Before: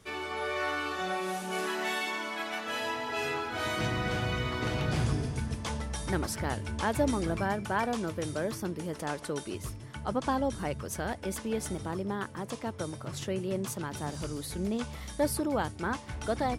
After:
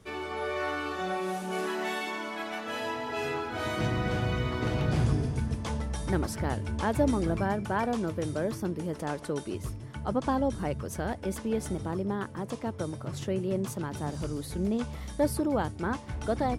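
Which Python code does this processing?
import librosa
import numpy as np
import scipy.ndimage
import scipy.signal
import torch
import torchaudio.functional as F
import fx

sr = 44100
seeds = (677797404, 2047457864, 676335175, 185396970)

y = fx.tilt_shelf(x, sr, db=3.5, hz=970.0)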